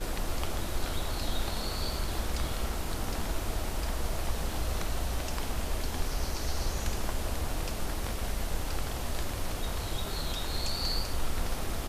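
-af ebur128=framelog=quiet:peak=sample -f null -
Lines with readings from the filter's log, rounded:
Integrated loudness:
  I:         -34.6 LUFS
  Threshold: -44.6 LUFS
Loudness range:
  LRA:         1.0 LU
  Threshold: -54.8 LUFS
  LRA low:   -35.3 LUFS
  LRA high:  -34.3 LUFS
Sample peak:
  Peak:      -15.6 dBFS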